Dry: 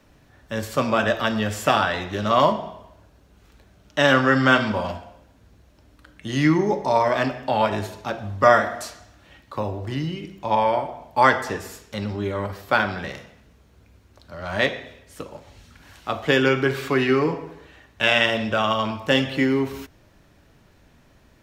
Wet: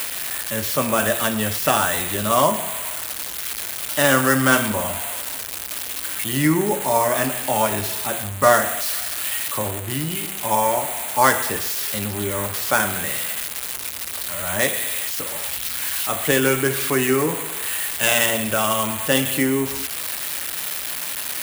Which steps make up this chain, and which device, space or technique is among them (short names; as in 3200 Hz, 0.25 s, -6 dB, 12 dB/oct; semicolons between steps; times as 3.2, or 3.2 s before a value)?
budget class-D amplifier (switching dead time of 0.08 ms; switching spikes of -10 dBFS)